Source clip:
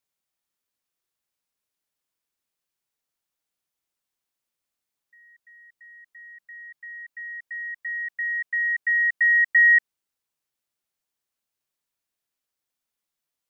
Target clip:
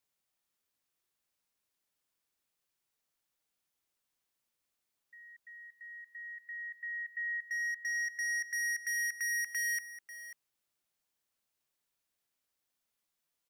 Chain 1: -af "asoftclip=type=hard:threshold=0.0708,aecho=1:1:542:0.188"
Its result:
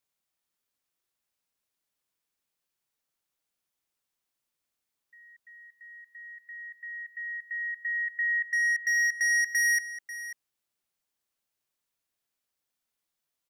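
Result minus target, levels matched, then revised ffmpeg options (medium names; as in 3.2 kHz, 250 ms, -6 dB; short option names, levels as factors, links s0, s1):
hard clipper: distortion -5 dB
-af "asoftclip=type=hard:threshold=0.0237,aecho=1:1:542:0.188"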